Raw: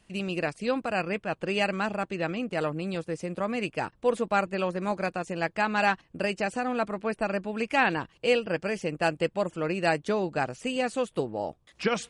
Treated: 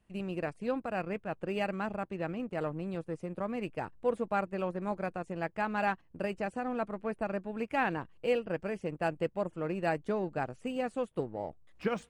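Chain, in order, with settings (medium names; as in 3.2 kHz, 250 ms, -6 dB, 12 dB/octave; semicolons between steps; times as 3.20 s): peaking EQ 62 Hz +4 dB 1.9 oct; in parallel at -4 dB: hysteresis with a dead band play -28.5 dBFS; on the sum: peaking EQ 5.3 kHz -10.5 dB 2.1 oct; trim -9 dB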